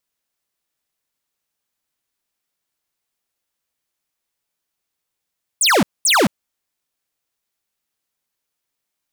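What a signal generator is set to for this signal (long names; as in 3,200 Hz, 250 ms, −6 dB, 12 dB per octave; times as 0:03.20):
repeated falling chirps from 10,000 Hz, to 160 Hz, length 0.22 s square, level −13.5 dB, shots 2, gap 0.22 s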